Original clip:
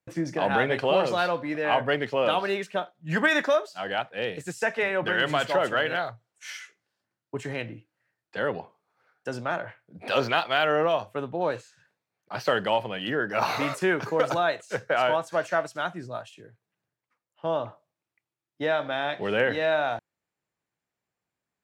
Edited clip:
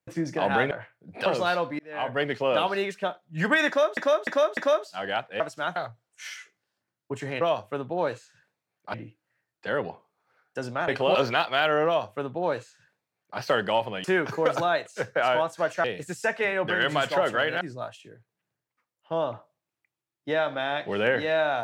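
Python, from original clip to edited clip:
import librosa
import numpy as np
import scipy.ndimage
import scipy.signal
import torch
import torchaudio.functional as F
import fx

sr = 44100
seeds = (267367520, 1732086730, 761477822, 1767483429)

y = fx.edit(x, sr, fx.swap(start_s=0.71, length_s=0.27, other_s=9.58, other_length_s=0.55),
    fx.fade_in_span(start_s=1.51, length_s=0.49),
    fx.repeat(start_s=3.39, length_s=0.3, count=4),
    fx.swap(start_s=4.22, length_s=1.77, other_s=15.58, other_length_s=0.36),
    fx.duplicate(start_s=10.84, length_s=1.53, to_s=7.64),
    fx.cut(start_s=13.02, length_s=0.76), tone=tone)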